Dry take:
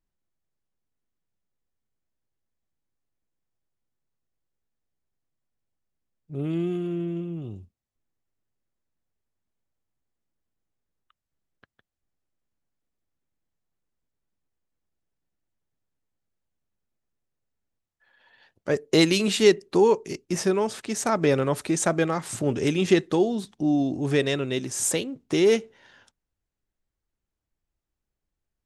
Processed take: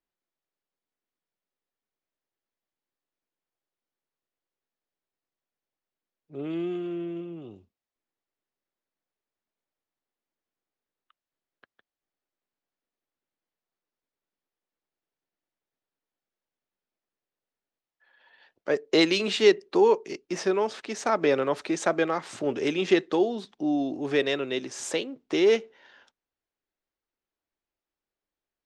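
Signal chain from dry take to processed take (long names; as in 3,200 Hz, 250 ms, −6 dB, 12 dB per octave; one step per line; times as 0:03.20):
three-way crossover with the lows and the highs turned down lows −17 dB, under 260 Hz, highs −23 dB, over 5,800 Hz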